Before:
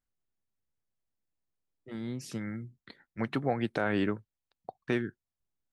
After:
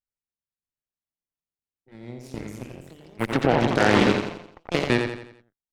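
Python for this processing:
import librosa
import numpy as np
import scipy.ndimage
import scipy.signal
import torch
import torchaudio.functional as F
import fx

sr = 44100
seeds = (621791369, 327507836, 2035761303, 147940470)

y = fx.echo_pitch(x, sr, ms=627, semitones=3, count=3, db_per_echo=-3.0)
y = fx.cheby_harmonics(y, sr, harmonics=(3, 5, 7, 8), levels_db=(-29, -28, -17, -28), full_scale_db=-14.0)
y = fx.echo_feedback(y, sr, ms=86, feedback_pct=43, wet_db=-6.0)
y = y * 10.0 ** (8.5 / 20.0)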